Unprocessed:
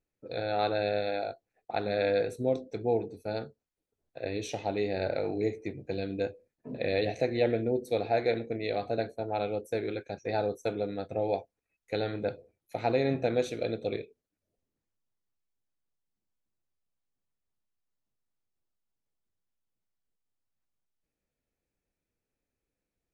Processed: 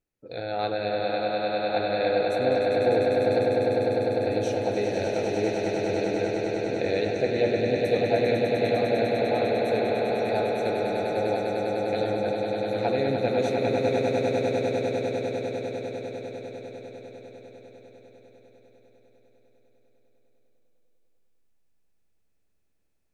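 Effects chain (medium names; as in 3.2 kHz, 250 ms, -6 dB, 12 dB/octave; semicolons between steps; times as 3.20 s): echo with a slow build-up 100 ms, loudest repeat 8, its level -6 dB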